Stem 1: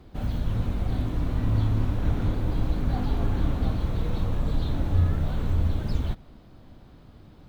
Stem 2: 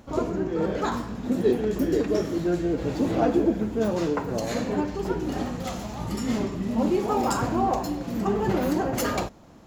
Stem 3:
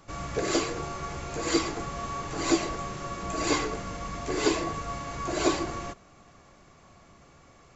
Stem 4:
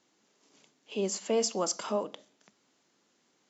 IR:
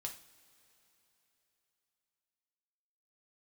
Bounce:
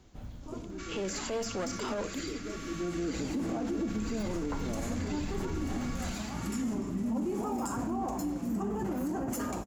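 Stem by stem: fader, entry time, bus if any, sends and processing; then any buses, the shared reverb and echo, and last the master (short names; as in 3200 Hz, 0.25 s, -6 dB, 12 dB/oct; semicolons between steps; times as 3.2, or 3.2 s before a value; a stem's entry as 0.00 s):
-9.0 dB, 0.00 s, no send, limiter -18.5 dBFS, peak gain reduction 7 dB; auto duck -13 dB, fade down 0.55 s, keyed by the fourth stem
2.52 s -15 dB -> 3.03 s -4 dB, 0.35 s, no send, graphic EQ 125/250/500/2000/4000/8000 Hz -5/+6/-6/-4/-11/+7 dB
+0.5 dB, 0.70 s, no send, elliptic high-pass 1300 Hz; compressor, threshold -42 dBFS, peak gain reduction 13.5 dB
+3.0 dB, 0.00 s, no send, de-esser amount 85%; one-sided clip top -34 dBFS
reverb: off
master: limiter -25.5 dBFS, peak gain reduction 10.5 dB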